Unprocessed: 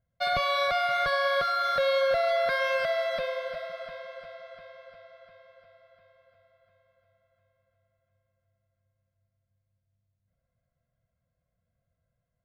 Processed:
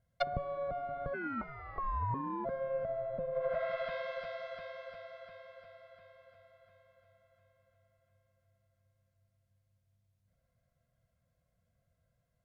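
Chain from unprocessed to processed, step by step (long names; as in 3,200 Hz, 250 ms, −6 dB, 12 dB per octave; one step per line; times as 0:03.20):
harmonic generator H 5 −35 dB, 6 −27 dB, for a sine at −15.5 dBFS
treble cut that deepens with the level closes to 360 Hz, closed at −26.5 dBFS
0:01.13–0:02.44: ring modulation 970 Hz → 320 Hz
level +1.5 dB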